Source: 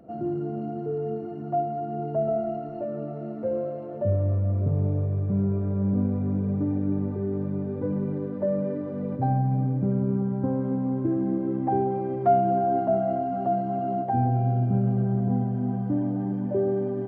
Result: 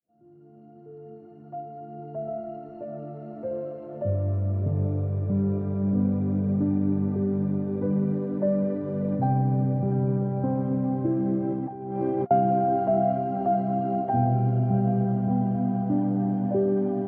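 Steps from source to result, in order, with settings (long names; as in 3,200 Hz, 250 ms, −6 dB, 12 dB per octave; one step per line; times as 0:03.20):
fade in at the beginning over 5.41 s
feedback delay with all-pass diffusion 667 ms, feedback 74%, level −11 dB
0:11.52–0:12.31: compressor whose output falls as the input rises −29 dBFS, ratio −0.5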